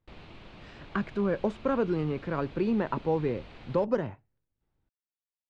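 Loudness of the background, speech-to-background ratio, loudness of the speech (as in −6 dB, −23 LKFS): −50.0 LKFS, 19.5 dB, −30.5 LKFS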